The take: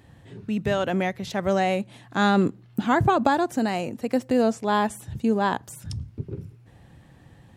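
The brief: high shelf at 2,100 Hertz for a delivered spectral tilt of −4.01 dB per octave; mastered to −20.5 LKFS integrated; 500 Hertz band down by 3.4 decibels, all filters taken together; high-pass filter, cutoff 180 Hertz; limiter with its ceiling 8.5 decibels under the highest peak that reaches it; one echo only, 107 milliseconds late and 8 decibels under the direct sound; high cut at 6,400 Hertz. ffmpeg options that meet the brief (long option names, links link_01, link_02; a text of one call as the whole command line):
ffmpeg -i in.wav -af "highpass=180,lowpass=6400,equalizer=frequency=500:width_type=o:gain=-4.5,highshelf=frequency=2100:gain=3.5,alimiter=limit=-14.5dB:level=0:latency=1,aecho=1:1:107:0.398,volume=6.5dB" out.wav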